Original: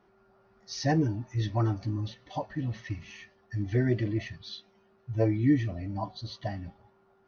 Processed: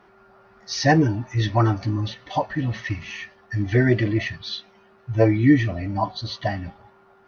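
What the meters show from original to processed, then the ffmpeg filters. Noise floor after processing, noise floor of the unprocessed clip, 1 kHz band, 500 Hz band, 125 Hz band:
−55 dBFS, −65 dBFS, +11.5 dB, +9.5 dB, +7.0 dB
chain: -af "equalizer=frequency=1700:width_type=o:width=2.8:gain=7,volume=7dB"

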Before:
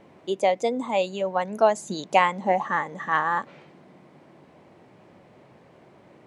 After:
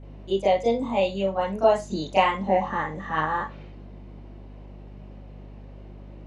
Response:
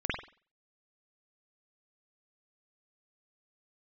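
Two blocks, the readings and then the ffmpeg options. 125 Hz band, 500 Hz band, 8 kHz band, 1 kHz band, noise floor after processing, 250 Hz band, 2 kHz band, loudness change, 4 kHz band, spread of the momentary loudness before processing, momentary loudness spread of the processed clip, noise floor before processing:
+5.5 dB, +1.5 dB, can't be measured, −1.0 dB, −43 dBFS, +3.0 dB, −3.0 dB, 0.0 dB, +1.0 dB, 7 LU, 8 LU, −54 dBFS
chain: -filter_complex "[1:a]atrim=start_sample=2205,asetrate=79380,aresample=44100[link_01];[0:a][link_01]afir=irnorm=-1:irlink=0,aeval=exprs='val(0)+0.0126*(sin(2*PI*50*n/s)+sin(2*PI*2*50*n/s)/2+sin(2*PI*3*50*n/s)/3+sin(2*PI*4*50*n/s)/4+sin(2*PI*5*50*n/s)/5)':channel_layout=same,volume=-3.5dB"

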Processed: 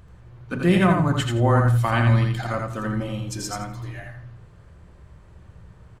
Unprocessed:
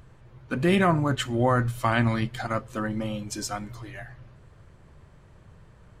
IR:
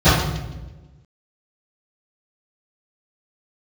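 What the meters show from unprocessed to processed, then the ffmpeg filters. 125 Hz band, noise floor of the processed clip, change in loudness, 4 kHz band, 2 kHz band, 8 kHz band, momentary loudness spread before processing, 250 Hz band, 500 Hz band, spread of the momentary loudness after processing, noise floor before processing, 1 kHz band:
+7.5 dB, −49 dBFS, +4.0 dB, +1.5 dB, +2.0 dB, +1.5 dB, 18 LU, +3.5 dB, +2.0 dB, 16 LU, −53 dBFS, +2.0 dB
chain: -filter_complex "[0:a]aecho=1:1:84|168|252:0.631|0.133|0.0278,asplit=2[link_01][link_02];[1:a]atrim=start_sample=2205,atrim=end_sample=6174[link_03];[link_02][link_03]afir=irnorm=-1:irlink=0,volume=-36.5dB[link_04];[link_01][link_04]amix=inputs=2:normalize=0"

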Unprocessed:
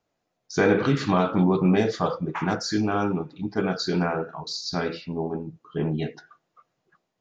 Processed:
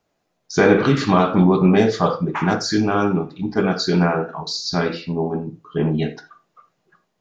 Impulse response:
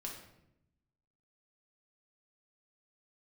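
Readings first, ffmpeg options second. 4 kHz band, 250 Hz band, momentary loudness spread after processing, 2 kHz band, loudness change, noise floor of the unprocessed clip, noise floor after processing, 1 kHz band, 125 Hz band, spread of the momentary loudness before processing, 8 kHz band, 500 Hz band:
+6.0 dB, +6.0 dB, 10 LU, +6.0 dB, +6.0 dB, −78 dBFS, −72 dBFS, +6.5 dB, +6.0 dB, 10 LU, can't be measured, +6.0 dB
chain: -filter_complex "[0:a]asplit=2[link_01][link_02];[1:a]atrim=start_sample=2205,atrim=end_sample=4410[link_03];[link_02][link_03]afir=irnorm=-1:irlink=0,volume=-3dB[link_04];[link_01][link_04]amix=inputs=2:normalize=0,volume=3dB"

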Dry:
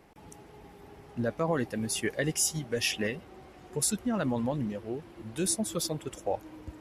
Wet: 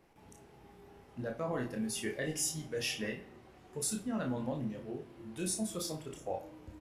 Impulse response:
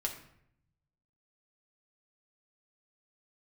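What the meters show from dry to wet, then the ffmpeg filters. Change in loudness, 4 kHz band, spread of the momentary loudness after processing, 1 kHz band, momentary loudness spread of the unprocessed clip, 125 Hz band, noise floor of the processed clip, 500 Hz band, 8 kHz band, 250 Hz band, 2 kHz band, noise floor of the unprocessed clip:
−6.5 dB, −6.5 dB, 17 LU, −7.0 dB, 14 LU, −6.5 dB, −59 dBFS, −6.5 dB, −6.5 dB, −5.5 dB, −6.5 dB, −52 dBFS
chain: -filter_complex "[0:a]asplit=2[link_01][link_02];[link_02]adelay=32,volume=-6dB[link_03];[link_01][link_03]amix=inputs=2:normalize=0,asplit=2[link_04][link_05];[1:a]atrim=start_sample=2205,adelay=23[link_06];[link_05][link_06]afir=irnorm=-1:irlink=0,volume=-7dB[link_07];[link_04][link_07]amix=inputs=2:normalize=0,volume=-8.5dB"

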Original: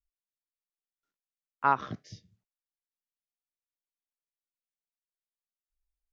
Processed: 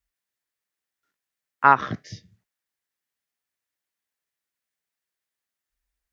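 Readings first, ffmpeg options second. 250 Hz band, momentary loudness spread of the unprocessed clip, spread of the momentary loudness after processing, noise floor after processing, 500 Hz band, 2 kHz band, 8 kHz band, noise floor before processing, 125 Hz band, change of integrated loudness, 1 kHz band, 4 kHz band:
+8.0 dB, 15 LU, 16 LU, below −85 dBFS, +8.0 dB, +12.0 dB, can't be measured, below −85 dBFS, +8.0 dB, +9.5 dB, +9.0 dB, +8.5 dB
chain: -af "highpass=41,equalizer=frequency=1800:width=2.5:gain=7.5,volume=8dB"

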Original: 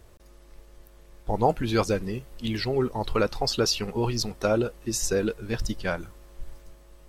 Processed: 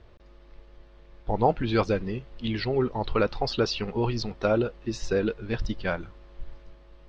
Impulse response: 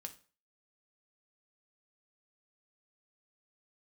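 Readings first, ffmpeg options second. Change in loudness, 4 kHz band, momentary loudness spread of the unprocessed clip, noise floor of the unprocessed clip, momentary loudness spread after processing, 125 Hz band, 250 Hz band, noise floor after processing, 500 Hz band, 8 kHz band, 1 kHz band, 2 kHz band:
−0.5 dB, −4.0 dB, 8 LU, −53 dBFS, 8 LU, 0.0 dB, 0.0 dB, −53 dBFS, 0.0 dB, −14.0 dB, 0.0 dB, 0.0 dB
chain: -af "lowpass=frequency=4300:width=0.5412,lowpass=frequency=4300:width=1.3066"

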